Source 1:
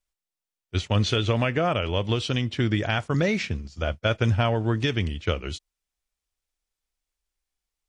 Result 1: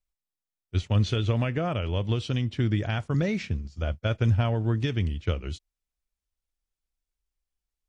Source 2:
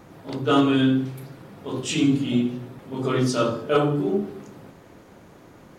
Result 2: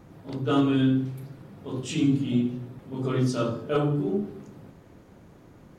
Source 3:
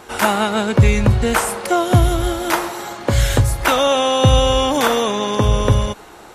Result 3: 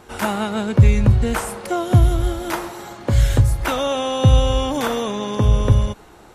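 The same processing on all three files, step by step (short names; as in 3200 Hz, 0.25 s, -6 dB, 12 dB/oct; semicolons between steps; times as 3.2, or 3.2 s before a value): low shelf 260 Hz +9.5 dB; gain -7.5 dB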